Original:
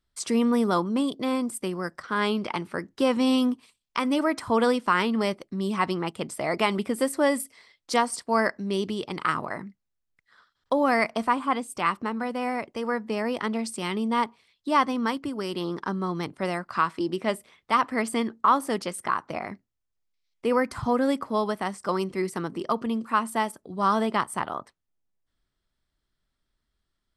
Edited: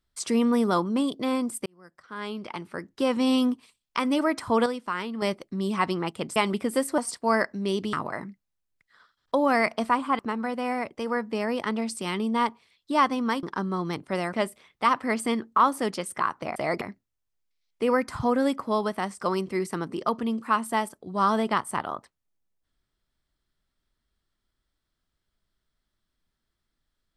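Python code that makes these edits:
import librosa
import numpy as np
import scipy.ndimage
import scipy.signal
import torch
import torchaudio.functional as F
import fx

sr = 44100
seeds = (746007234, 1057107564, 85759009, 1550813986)

y = fx.edit(x, sr, fx.fade_in_span(start_s=1.66, length_s=1.74),
    fx.clip_gain(start_s=4.66, length_s=0.56, db=-8.0),
    fx.move(start_s=6.36, length_s=0.25, to_s=19.44),
    fx.cut(start_s=7.23, length_s=0.8),
    fx.cut(start_s=8.98, length_s=0.33),
    fx.cut(start_s=11.57, length_s=0.39),
    fx.cut(start_s=15.2, length_s=0.53),
    fx.cut(start_s=16.63, length_s=0.58), tone=tone)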